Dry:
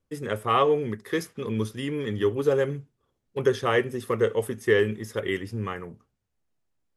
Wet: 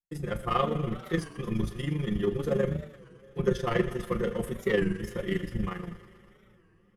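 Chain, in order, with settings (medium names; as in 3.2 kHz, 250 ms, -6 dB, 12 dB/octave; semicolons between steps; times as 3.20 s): octave divider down 1 oct, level -5 dB; thinning echo 114 ms, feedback 83%, high-pass 460 Hz, level -15 dB; waveshaping leveller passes 1; bass shelf 200 Hz +9.5 dB; gate with hold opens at -48 dBFS; AM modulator 25 Hz, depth 60%; comb 5.7 ms, depth 96%; two-slope reverb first 0.43 s, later 4.9 s, from -18 dB, DRR 11 dB; warped record 33 1/3 rpm, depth 160 cents; trim -9 dB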